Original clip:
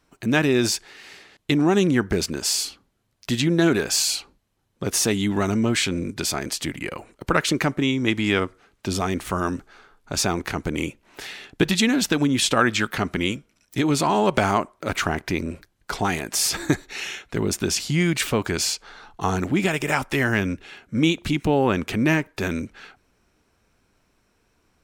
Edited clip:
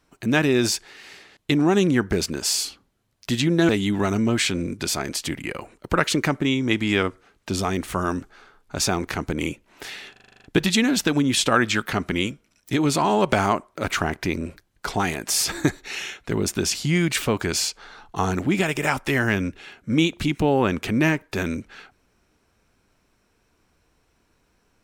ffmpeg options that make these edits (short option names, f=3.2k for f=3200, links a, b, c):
-filter_complex "[0:a]asplit=10[a][b][c][d][e][f][g][h][i][j];[a]atrim=end=3.692[k];[b]atrim=start=5.058:end=11.532[l];[c]atrim=start=11.488:end=11.532[m];[d]atrim=start=11.488:end=11.532[n];[e]atrim=start=11.488:end=11.532[o];[f]atrim=start=11.488:end=11.532[p];[g]atrim=start=11.488:end=11.532[q];[h]atrim=start=11.488:end=11.532[r];[i]atrim=start=11.488:end=11.532[s];[j]atrim=start=11.488[t];[k][l]acrossfade=d=0.004:c1=hsin:c2=hsin[u];[u][m]acrossfade=d=0.004:c1=hsin:c2=hsin[v];[v][n]acrossfade=d=0.004:c1=hsin:c2=hsin[w];[w][o]acrossfade=d=0.004:c1=hsin:c2=hsin[x];[x][p]acrossfade=d=0.004:c1=hsin:c2=hsin[y];[y][q]acrossfade=d=0.004:c1=hsin:c2=hsin[z];[z][r]acrossfade=d=0.004:c1=hsin:c2=hsin[aa];[aa][s]acrossfade=d=0.004:c1=hsin:c2=hsin[ab];[ab][t]acrossfade=d=0.004:c1=hsin:c2=hsin"